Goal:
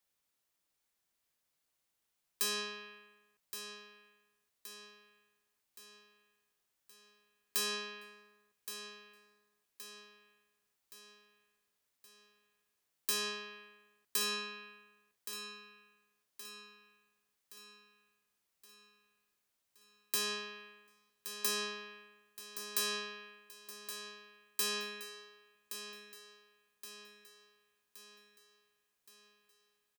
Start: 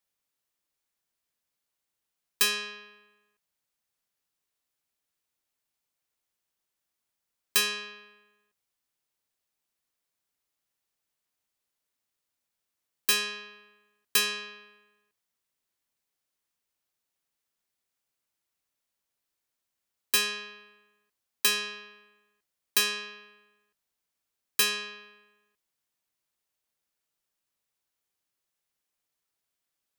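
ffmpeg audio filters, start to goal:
-filter_complex "[0:a]acrossover=split=150|1500|3500[s0][s1][s2][s3];[s2]acompressor=threshold=0.00282:ratio=6[s4];[s0][s1][s4][s3]amix=inputs=4:normalize=0,alimiter=limit=0.1:level=0:latency=1:release=182,aecho=1:1:1121|2242|3363|4484|5605|6726:0.299|0.155|0.0807|0.042|0.0218|0.0114,volume=1.12"

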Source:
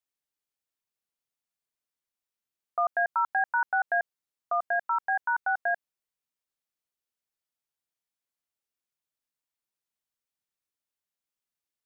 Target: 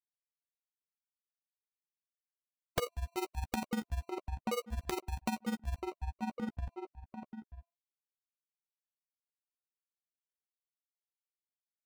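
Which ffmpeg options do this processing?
-filter_complex "[0:a]bandreject=f=341.3:t=h:w=4,bandreject=f=682.6:t=h:w=4,bandreject=f=1023.9:t=h:w=4,afftfilt=real='re*gte(hypot(re,im),0.0158)':imag='im*gte(hypot(re,im),0.0158)':win_size=1024:overlap=0.75,firequalizer=gain_entry='entry(470,0);entry(670,-22);entry(1100,10);entry(2300,-19)':delay=0.05:min_phase=1,acrusher=samples=26:mix=1:aa=0.000001,asplit=2[s0][s1];[s1]adelay=933,lowpass=f=1600:p=1,volume=0.158,asplit=2[s2][s3];[s3]adelay=933,lowpass=f=1600:p=1,volume=0.19[s4];[s2][s4]amix=inputs=2:normalize=0[s5];[s0][s5]amix=inputs=2:normalize=0,acompressor=threshold=0.00447:ratio=16,tremolo=f=20:d=0.824,aeval=exprs='(mod(89.1*val(0)+1,2)-1)/89.1':c=same,asplit=2[s6][s7];[s7]adelay=13,volume=0.237[s8];[s6][s8]amix=inputs=2:normalize=0,volume=6.68"

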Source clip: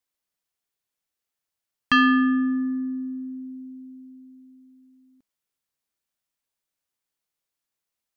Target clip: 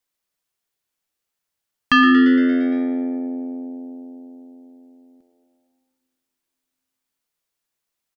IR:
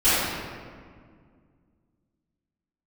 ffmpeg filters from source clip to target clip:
-filter_complex "[0:a]asplit=8[s0][s1][s2][s3][s4][s5][s6][s7];[s1]adelay=115,afreqshift=88,volume=0.224[s8];[s2]adelay=230,afreqshift=176,volume=0.141[s9];[s3]adelay=345,afreqshift=264,volume=0.0891[s10];[s4]adelay=460,afreqshift=352,volume=0.0562[s11];[s5]adelay=575,afreqshift=440,volume=0.0351[s12];[s6]adelay=690,afreqshift=528,volume=0.0221[s13];[s7]adelay=805,afreqshift=616,volume=0.014[s14];[s0][s8][s9][s10][s11][s12][s13][s14]amix=inputs=8:normalize=0,asplit=2[s15][s16];[1:a]atrim=start_sample=2205[s17];[s16][s17]afir=irnorm=-1:irlink=0,volume=0.0299[s18];[s15][s18]amix=inputs=2:normalize=0,volume=1.5"

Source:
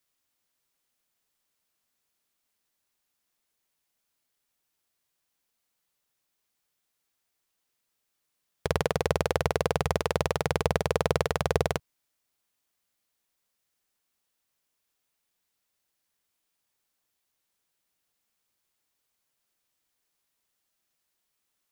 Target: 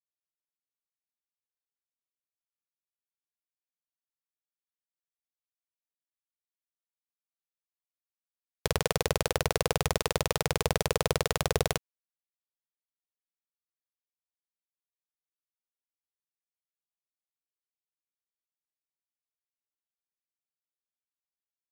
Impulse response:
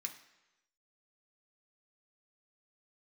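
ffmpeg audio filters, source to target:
-af "highshelf=f=2700:g=11,aeval=exprs='val(0)*gte(abs(val(0)),0.0075)':c=same,alimiter=level_in=3.16:limit=0.891:release=50:level=0:latency=1,volume=0.708"

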